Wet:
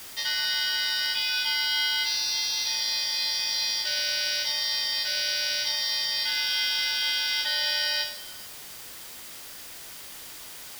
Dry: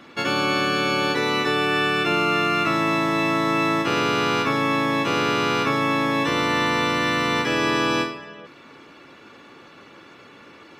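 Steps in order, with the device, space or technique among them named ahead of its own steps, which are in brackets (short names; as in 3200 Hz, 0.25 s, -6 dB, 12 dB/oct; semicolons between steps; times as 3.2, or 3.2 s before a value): split-band scrambled radio (four-band scrambler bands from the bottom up 4321; BPF 380–3400 Hz; white noise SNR 14 dB)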